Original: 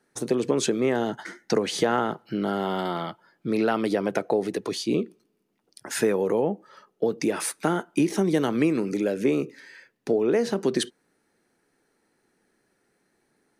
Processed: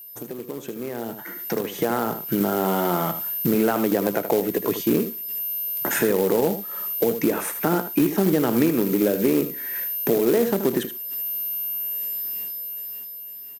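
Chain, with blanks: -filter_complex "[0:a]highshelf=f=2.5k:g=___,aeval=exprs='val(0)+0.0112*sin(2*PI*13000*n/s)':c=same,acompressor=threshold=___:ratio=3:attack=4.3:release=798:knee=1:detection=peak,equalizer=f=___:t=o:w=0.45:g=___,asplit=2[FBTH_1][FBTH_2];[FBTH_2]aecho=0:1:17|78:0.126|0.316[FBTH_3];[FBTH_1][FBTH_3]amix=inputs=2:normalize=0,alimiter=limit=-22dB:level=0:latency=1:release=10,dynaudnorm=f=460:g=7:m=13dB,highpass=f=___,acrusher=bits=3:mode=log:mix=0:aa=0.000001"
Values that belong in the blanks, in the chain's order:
-8.5, -31dB, 4.5k, -12.5, 58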